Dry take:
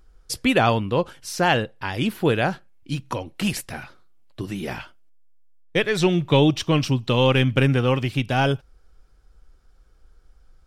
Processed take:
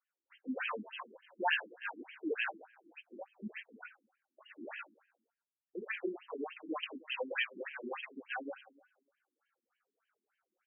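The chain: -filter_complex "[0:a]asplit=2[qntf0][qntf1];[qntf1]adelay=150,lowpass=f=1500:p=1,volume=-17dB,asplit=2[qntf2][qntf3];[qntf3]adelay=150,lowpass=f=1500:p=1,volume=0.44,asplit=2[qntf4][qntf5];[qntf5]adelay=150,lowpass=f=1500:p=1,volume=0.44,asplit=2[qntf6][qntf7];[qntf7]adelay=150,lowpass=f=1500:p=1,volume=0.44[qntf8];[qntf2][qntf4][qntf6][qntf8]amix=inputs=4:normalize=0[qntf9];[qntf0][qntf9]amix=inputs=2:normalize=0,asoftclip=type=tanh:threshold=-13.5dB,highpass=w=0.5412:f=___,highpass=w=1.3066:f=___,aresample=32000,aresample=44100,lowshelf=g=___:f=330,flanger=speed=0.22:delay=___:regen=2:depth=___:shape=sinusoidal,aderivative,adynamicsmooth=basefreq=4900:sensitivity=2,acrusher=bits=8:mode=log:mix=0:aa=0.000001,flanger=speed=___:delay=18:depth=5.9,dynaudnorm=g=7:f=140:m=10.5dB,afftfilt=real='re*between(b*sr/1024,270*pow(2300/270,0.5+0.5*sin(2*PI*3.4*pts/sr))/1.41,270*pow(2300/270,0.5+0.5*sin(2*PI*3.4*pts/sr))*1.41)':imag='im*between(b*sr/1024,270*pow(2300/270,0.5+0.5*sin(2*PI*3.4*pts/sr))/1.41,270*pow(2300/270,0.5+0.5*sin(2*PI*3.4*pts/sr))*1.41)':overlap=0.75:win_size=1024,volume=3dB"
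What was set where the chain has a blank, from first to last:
160, 160, 10, 3.4, 3.1, 2.7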